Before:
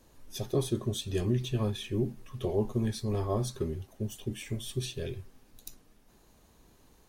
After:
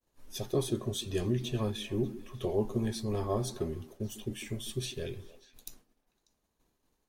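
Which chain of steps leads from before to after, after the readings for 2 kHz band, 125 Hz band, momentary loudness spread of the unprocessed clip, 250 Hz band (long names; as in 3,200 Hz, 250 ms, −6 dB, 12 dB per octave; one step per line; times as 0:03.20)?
0.0 dB, −3.5 dB, 13 LU, −1.0 dB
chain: downward expander −49 dBFS
parametric band 75 Hz −4 dB 2.7 octaves
on a send: echo through a band-pass that steps 148 ms, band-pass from 260 Hz, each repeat 1.4 octaves, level −11.5 dB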